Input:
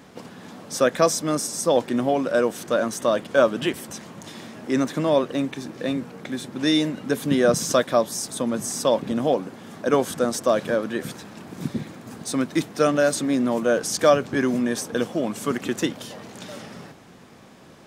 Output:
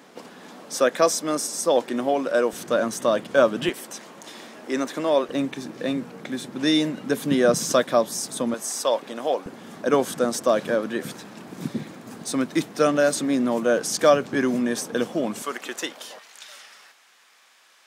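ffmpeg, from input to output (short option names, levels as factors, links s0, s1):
-af "asetnsamples=n=441:p=0,asendcmd='2.53 highpass f 110;3.69 highpass f 330;5.29 highpass f 140;8.54 highpass f 500;9.46 highpass f 150;15.42 highpass f 590;16.19 highpass f 1500',highpass=270"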